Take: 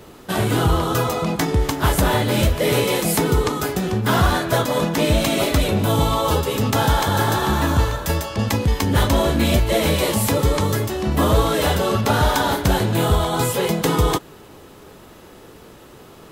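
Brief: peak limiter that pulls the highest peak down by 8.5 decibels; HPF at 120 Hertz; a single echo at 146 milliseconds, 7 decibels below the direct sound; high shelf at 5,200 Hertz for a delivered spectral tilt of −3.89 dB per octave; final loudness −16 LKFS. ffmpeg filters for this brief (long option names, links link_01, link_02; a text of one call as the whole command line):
ffmpeg -i in.wav -af "highpass=120,highshelf=frequency=5200:gain=7,alimiter=limit=-11dB:level=0:latency=1,aecho=1:1:146:0.447,volume=4.5dB" out.wav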